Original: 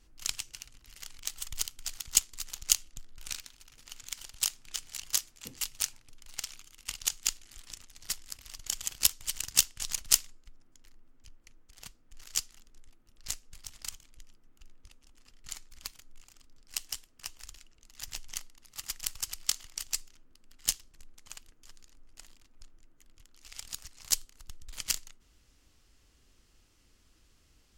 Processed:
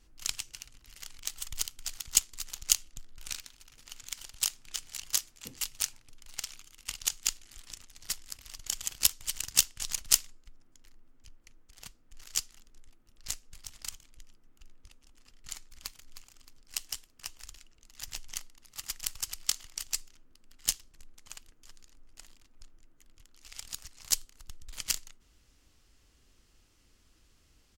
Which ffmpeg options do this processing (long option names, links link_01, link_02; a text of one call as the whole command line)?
ffmpeg -i in.wav -filter_complex "[0:a]asplit=2[link_01][link_02];[link_02]afade=type=in:start_time=15.56:duration=0.01,afade=type=out:start_time=15.98:duration=0.01,aecho=0:1:310|620|930|1240:0.298538|0.119415|0.0477661|0.0191064[link_03];[link_01][link_03]amix=inputs=2:normalize=0" out.wav